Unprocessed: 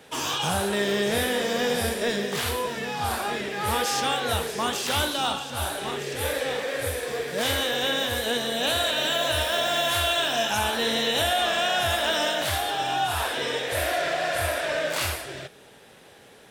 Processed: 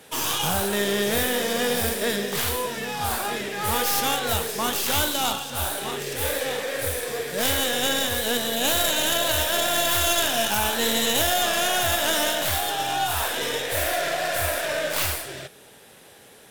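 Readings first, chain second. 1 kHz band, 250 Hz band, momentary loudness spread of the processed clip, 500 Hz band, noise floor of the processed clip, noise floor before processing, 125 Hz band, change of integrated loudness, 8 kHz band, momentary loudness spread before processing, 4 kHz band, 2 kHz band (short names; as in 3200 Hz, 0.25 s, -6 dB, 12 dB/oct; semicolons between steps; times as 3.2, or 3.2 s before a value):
+0.5 dB, +1.5 dB, 7 LU, 0.0 dB, -49 dBFS, -51 dBFS, 0.0 dB, +2.0 dB, +6.5 dB, 6 LU, +1.0 dB, +0.5 dB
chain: tracing distortion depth 0.12 ms; bell 14000 Hz +11 dB 1.3 oct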